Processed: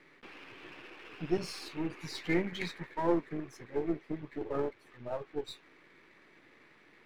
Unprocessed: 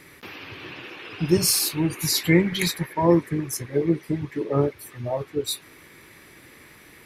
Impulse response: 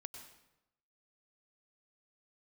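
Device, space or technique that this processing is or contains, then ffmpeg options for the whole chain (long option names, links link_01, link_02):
crystal radio: -af "highpass=200,lowpass=2900,aeval=exprs='if(lt(val(0),0),0.447*val(0),val(0))':channel_layout=same,volume=-7.5dB"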